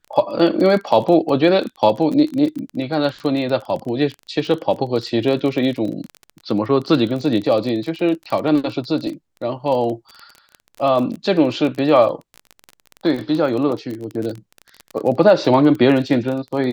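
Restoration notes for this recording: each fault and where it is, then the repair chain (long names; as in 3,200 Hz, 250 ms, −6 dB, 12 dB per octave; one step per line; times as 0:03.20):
surface crackle 24 per second −24 dBFS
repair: click removal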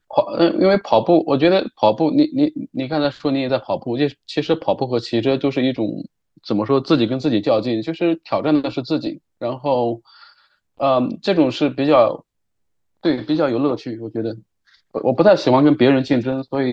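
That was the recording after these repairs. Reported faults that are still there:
none of them is left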